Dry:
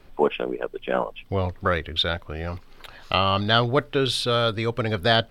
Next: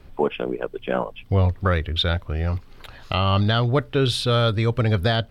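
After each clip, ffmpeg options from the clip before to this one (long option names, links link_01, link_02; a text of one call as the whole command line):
ffmpeg -i in.wav -af "alimiter=limit=-10.5dB:level=0:latency=1:release=257,equalizer=frequency=75:width=0.48:gain=10" out.wav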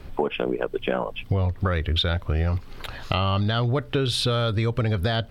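ffmpeg -i in.wav -filter_complex "[0:a]asplit=2[link_01][link_02];[link_02]alimiter=limit=-16.5dB:level=0:latency=1,volume=0.5dB[link_03];[link_01][link_03]amix=inputs=2:normalize=0,acompressor=threshold=-20dB:ratio=6" out.wav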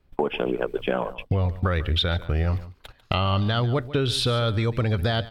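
ffmpeg -i in.wav -af "agate=range=-23dB:threshold=-31dB:ratio=16:detection=peak,aecho=1:1:145:0.15" out.wav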